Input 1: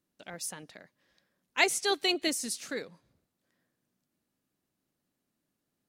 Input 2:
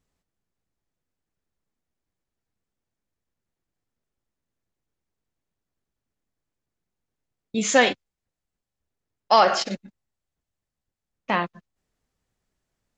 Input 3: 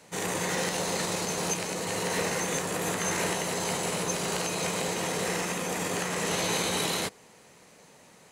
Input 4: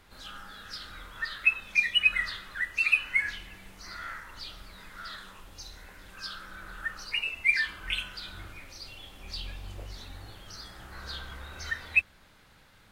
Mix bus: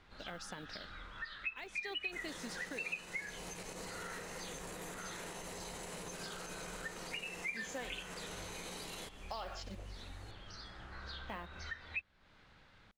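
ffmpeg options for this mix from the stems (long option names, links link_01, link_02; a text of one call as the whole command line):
ffmpeg -i stem1.wav -i stem2.wav -i stem3.wav -i stem4.wav -filter_complex "[0:a]lowpass=3900,acompressor=threshold=-36dB:ratio=2.5,volume=2dB[link_01];[1:a]volume=-15.5dB[link_02];[2:a]alimiter=level_in=3dB:limit=-24dB:level=0:latency=1:release=135,volume=-3dB,adelay=2000,volume=-6.5dB[link_03];[3:a]lowpass=4600,volume=-4dB[link_04];[link_01][link_02]amix=inputs=2:normalize=0,acrusher=bits=7:mode=log:mix=0:aa=0.000001,alimiter=limit=-24dB:level=0:latency=1:release=300,volume=0dB[link_05];[link_03][link_04][link_05]amix=inputs=3:normalize=0,acompressor=threshold=-44dB:ratio=2.5" out.wav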